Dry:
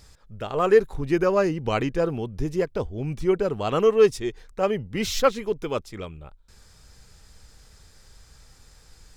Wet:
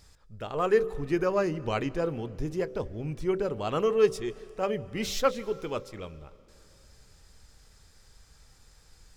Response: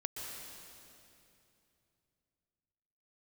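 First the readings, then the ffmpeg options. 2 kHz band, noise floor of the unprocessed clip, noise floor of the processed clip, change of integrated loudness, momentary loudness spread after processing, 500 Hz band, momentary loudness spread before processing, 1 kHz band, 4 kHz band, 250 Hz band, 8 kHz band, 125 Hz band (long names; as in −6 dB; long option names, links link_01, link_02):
−5.0 dB, −54 dBFS, −58 dBFS, −5.5 dB, 11 LU, −5.5 dB, 12 LU, −5.0 dB, −5.0 dB, −5.5 dB, −5.0 dB, −5.0 dB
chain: -filter_complex "[0:a]bandreject=frequency=63.8:width_type=h:width=4,bandreject=frequency=127.6:width_type=h:width=4,bandreject=frequency=191.4:width_type=h:width=4,bandreject=frequency=255.2:width_type=h:width=4,bandreject=frequency=319:width_type=h:width=4,bandreject=frequency=382.8:width_type=h:width=4,bandreject=frequency=446.6:width_type=h:width=4,bandreject=frequency=510.4:width_type=h:width=4,bandreject=frequency=574.2:width_type=h:width=4,asplit=2[link_01][link_02];[1:a]atrim=start_sample=2205,adelay=26[link_03];[link_02][link_03]afir=irnorm=-1:irlink=0,volume=-18dB[link_04];[link_01][link_04]amix=inputs=2:normalize=0,volume=-5dB"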